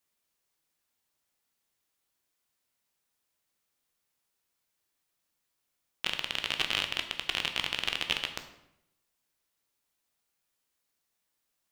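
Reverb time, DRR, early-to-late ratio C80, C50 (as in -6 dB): 0.80 s, 5.5 dB, 12.0 dB, 10.0 dB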